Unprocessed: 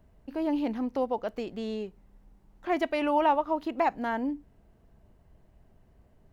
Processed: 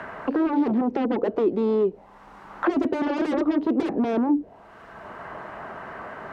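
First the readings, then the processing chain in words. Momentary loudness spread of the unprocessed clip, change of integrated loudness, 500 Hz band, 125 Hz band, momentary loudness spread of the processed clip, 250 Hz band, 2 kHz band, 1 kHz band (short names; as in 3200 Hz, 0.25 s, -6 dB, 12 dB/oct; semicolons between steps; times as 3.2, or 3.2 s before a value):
13 LU, +5.5 dB, +6.0 dB, n/a, 15 LU, +9.0 dB, +3.0 dB, -1.5 dB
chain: sine folder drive 18 dB, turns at -13.5 dBFS; auto-wah 350–1700 Hz, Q 2.5, down, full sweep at -16.5 dBFS; three-band squash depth 70%; gain +2.5 dB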